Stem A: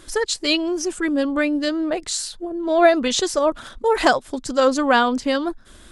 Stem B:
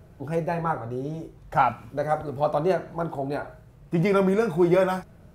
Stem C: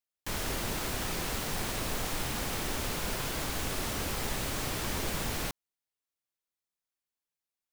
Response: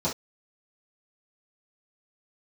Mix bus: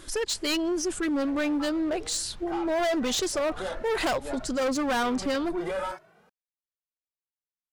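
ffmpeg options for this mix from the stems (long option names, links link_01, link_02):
-filter_complex "[0:a]volume=-1dB,asplit=2[link_01][link_02];[1:a]highpass=frequency=470:poles=1,asplit=2[link_03][link_04];[link_04]highpass=frequency=720:poles=1,volume=21dB,asoftclip=type=tanh:threshold=-8.5dB[link_05];[link_03][link_05]amix=inputs=2:normalize=0,lowpass=frequency=2300:poles=1,volume=-6dB,asplit=2[link_06][link_07];[link_07]adelay=2.1,afreqshift=1.9[link_08];[link_06][link_08]amix=inputs=2:normalize=1,adelay=950,volume=-8dB[link_09];[2:a]asubboost=boost=4.5:cutoff=150,adynamicsmooth=sensitivity=4.5:basefreq=2600,volume=-18.5dB[link_10];[link_02]apad=whole_len=277599[link_11];[link_09][link_11]sidechaincompress=threshold=-32dB:ratio=8:attack=49:release=122[link_12];[link_01][link_12][link_10]amix=inputs=3:normalize=0,asoftclip=type=hard:threshold=-20.5dB,alimiter=limit=-23.5dB:level=0:latency=1:release=20"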